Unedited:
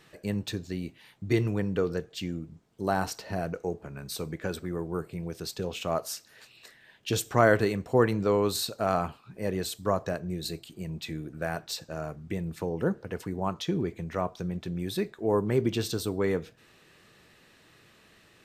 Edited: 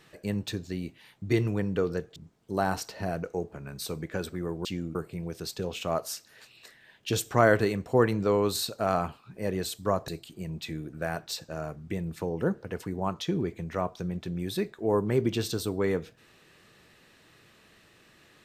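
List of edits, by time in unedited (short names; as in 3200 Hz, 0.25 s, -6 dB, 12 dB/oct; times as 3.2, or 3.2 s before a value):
2.16–2.46 move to 4.95
10.08–10.48 cut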